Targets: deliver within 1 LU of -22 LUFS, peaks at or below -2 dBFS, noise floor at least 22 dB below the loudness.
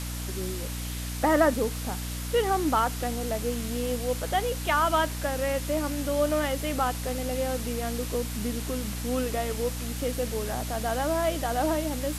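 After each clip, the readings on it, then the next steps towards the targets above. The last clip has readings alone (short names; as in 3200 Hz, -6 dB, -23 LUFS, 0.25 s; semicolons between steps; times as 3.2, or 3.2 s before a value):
hum 60 Hz; harmonics up to 300 Hz; hum level -32 dBFS; noise floor -34 dBFS; noise floor target -50 dBFS; loudness -28.0 LUFS; peak -10.0 dBFS; loudness target -22.0 LUFS
-> notches 60/120/180/240/300 Hz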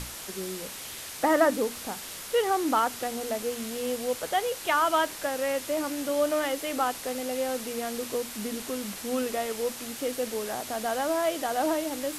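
hum none; noise floor -40 dBFS; noise floor target -51 dBFS
-> noise print and reduce 11 dB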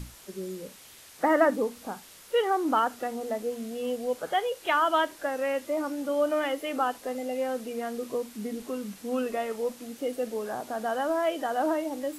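noise floor -51 dBFS; noise floor target -52 dBFS
-> noise print and reduce 6 dB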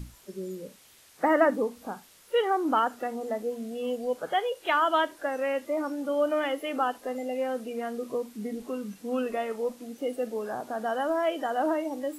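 noise floor -57 dBFS; loudness -29.5 LUFS; peak -10.0 dBFS; loudness target -22.0 LUFS
-> gain +7.5 dB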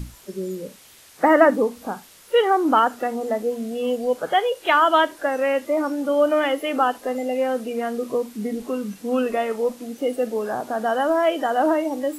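loudness -22.0 LUFS; peak -2.5 dBFS; noise floor -49 dBFS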